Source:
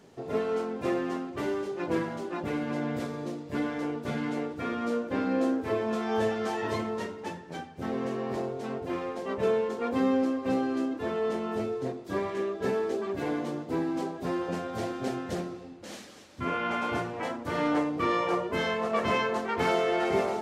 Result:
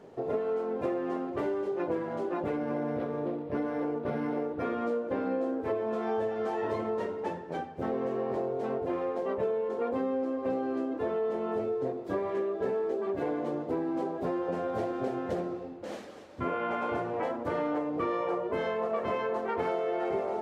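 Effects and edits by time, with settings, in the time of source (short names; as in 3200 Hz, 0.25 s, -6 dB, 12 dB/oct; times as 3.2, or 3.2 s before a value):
2.56–4.63 decimation joined by straight lines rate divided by 6×
whole clip: EQ curve 220 Hz 0 dB, 510 Hz +8 dB, 5800 Hz -9 dB; compressor, threshold -28 dBFS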